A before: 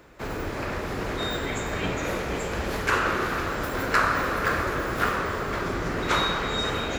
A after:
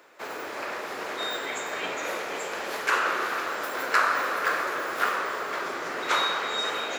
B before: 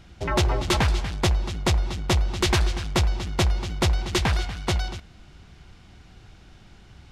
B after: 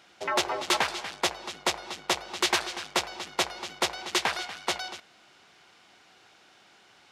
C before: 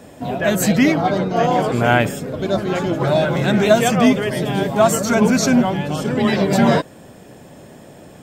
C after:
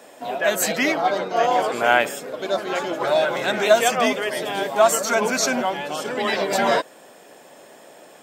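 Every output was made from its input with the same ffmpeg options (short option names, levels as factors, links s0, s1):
-af "highpass=510"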